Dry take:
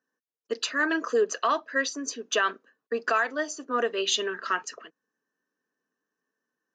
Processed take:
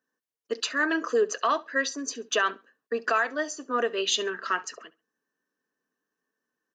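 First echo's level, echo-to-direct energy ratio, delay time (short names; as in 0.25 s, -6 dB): -22.0 dB, -21.5 dB, 68 ms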